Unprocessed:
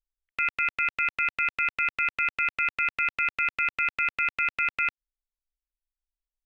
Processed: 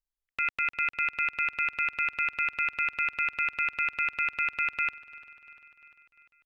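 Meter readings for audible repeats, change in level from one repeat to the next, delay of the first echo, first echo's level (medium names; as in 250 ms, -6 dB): 4, -4.5 dB, 347 ms, -20.0 dB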